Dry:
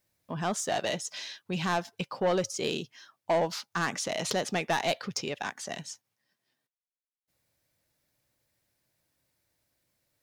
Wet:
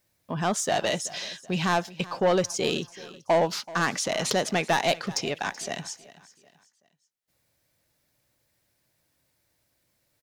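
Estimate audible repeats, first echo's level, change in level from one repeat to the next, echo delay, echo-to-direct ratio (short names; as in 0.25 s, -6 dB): 2, -19.0 dB, -8.0 dB, 0.38 s, -18.5 dB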